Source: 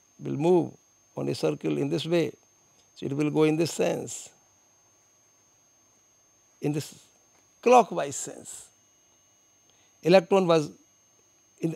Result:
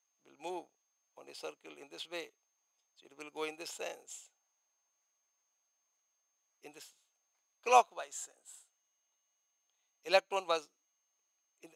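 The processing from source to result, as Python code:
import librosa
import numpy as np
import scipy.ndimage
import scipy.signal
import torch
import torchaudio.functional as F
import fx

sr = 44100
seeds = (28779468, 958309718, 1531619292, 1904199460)

y = scipy.signal.sosfilt(scipy.signal.butter(2, 820.0, 'highpass', fs=sr, output='sos'), x)
y = fx.upward_expand(y, sr, threshold_db=-52.0, expansion=1.5)
y = y * 10.0 ** (-1.5 / 20.0)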